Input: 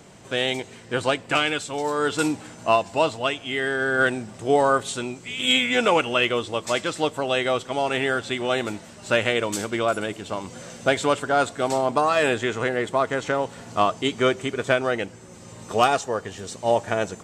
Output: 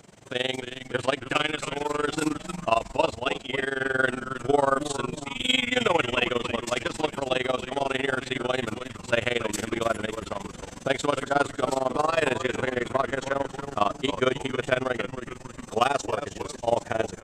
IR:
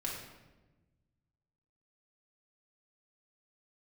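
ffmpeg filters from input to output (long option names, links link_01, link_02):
-filter_complex "[0:a]asplit=7[link_01][link_02][link_03][link_04][link_05][link_06][link_07];[link_02]adelay=290,afreqshift=-130,volume=-10dB[link_08];[link_03]adelay=580,afreqshift=-260,volume=-15.7dB[link_09];[link_04]adelay=870,afreqshift=-390,volume=-21.4dB[link_10];[link_05]adelay=1160,afreqshift=-520,volume=-27dB[link_11];[link_06]adelay=1450,afreqshift=-650,volume=-32.7dB[link_12];[link_07]adelay=1740,afreqshift=-780,volume=-38.4dB[link_13];[link_01][link_08][link_09][link_10][link_11][link_12][link_13]amix=inputs=7:normalize=0,tremolo=f=22:d=0.919"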